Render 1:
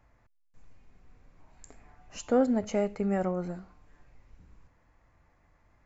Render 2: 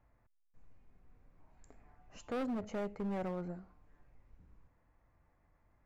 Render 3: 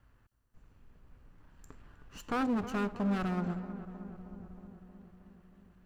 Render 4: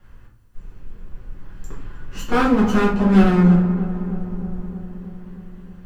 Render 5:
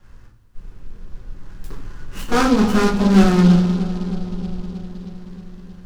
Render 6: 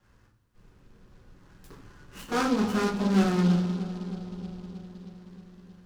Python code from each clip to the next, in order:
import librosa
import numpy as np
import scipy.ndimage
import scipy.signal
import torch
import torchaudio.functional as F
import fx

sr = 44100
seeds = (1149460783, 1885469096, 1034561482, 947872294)

y1 = fx.high_shelf(x, sr, hz=2800.0, db=-11.5)
y1 = np.clip(y1, -10.0 ** (-28.0 / 20.0), 10.0 ** (-28.0 / 20.0))
y1 = F.gain(torch.from_numpy(y1), -6.0).numpy()
y2 = fx.lower_of_two(y1, sr, delay_ms=0.69)
y2 = fx.echo_filtered(y2, sr, ms=314, feedback_pct=71, hz=1700.0, wet_db=-12.0)
y2 = F.gain(torch.from_numpy(y2), 7.0).numpy()
y3 = fx.room_shoebox(y2, sr, seeds[0], volume_m3=44.0, walls='mixed', distance_m=1.3)
y3 = F.gain(torch.from_numpy(y3), 7.5).numpy()
y4 = fx.noise_mod_delay(y3, sr, seeds[1], noise_hz=3500.0, depth_ms=0.039)
y4 = F.gain(torch.from_numpy(y4), 1.0).numpy()
y5 = fx.highpass(y4, sr, hz=120.0, slope=6)
y5 = F.gain(torch.from_numpy(y5), -9.0).numpy()